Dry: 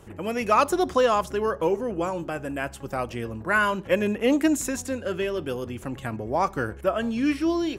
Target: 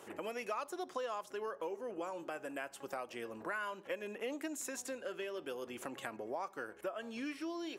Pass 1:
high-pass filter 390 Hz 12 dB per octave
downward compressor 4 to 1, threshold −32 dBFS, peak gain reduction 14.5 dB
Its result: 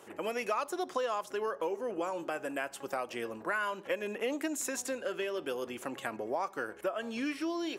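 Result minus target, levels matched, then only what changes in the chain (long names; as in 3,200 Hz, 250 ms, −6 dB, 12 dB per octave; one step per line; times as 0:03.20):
downward compressor: peak gain reduction −6.5 dB
change: downward compressor 4 to 1, threshold −41 dBFS, peak gain reduction 21.5 dB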